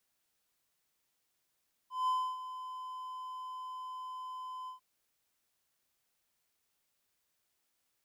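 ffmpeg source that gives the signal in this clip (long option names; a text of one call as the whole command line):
ffmpeg -f lavfi -i "aevalsrc='0.0531*(1-4*abs(mod(1020*t+0.25,1)-0.5))':duration=2.897:sample_rate=44100,afade=type=in:duration=0.177,afade=type=out:start_time=0.177:duration=0.29:silence=0.224,afade=type=out:start_time=2.78:duration=0.117" out.wav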